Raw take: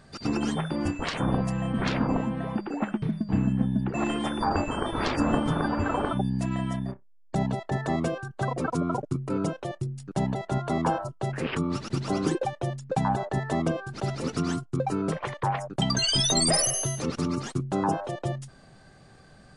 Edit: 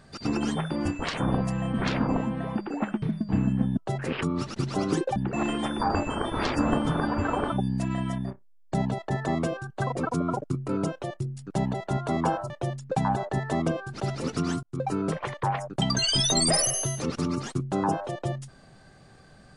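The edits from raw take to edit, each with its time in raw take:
11.11–12.50 s: move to 3.77 s
14.63–14.96 s: fade in equal-power

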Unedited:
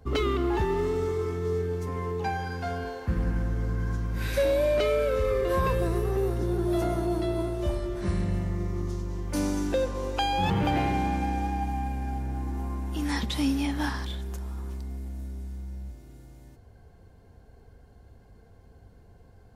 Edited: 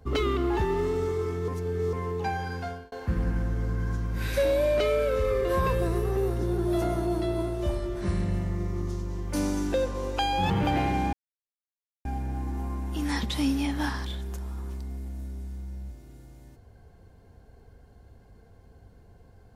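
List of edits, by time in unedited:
1.48–1.93 s: reverse
2.58–2.92 s: fade out
11.13–12.05 s: mute

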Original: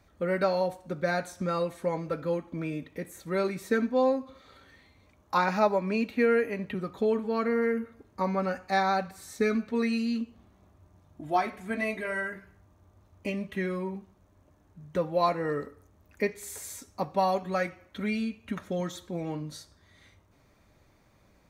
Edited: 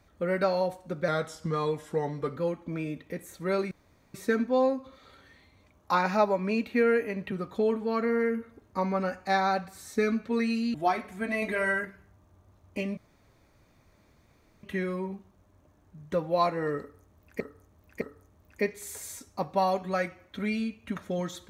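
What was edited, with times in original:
1.08–2.23 s: speed 89%
3.57 s: insert room tone 0.43 s
10.17–11.23 s: delete
11.91–12.34 s: gain +4.5 dB
13.46 s: insert room tone 1.66 s
15.62–16.23 s: loop, 3 plays

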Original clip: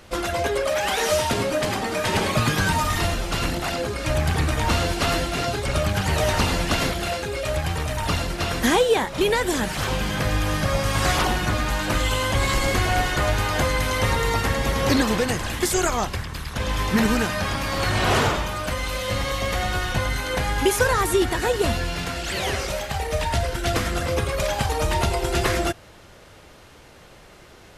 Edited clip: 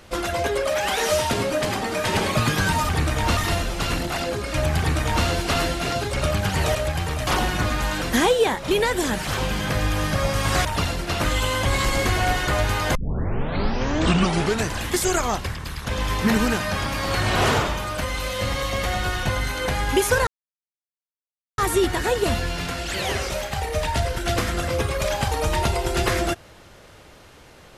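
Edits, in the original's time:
4.30–4.78 s: copy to 2.89 s
6.27–7.44 s: delete
7.96–8.52 s: swap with 11.15–11.90 s
13.64 s: tape start 1.83 s
20.96 s: insert silence 1.31 s

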